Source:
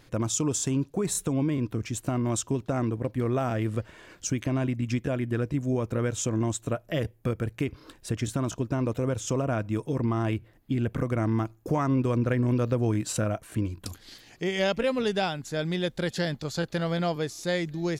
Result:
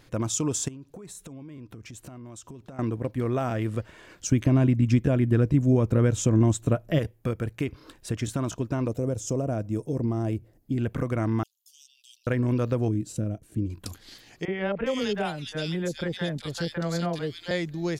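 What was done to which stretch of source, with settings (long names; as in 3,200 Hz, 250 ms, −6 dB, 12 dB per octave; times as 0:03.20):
0:00.68–0:02.79: downward compressor 12 to 1, threshold −39 dBFS
0:04.32–0:06.99: low-shelf EQ 400 Hz +9 dB
0:08.88–0:10.78: flat-topped bell 1,900 Hz −10.5 dB 2.4 octaves
0:11.43–0:12.27: Butterworth high-pass 2,900 Hz 96 dB per octave
0:12.88–0:13.70: drawn EQ curve 320 Hz 0 dB, 1,100 Hz −20 dB, 6,400 Hz −9 dB
0:14.45–0:17.51: three-band delay without the direct sound mids, lows, highs 30/410 ms, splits 670/2,400 Hz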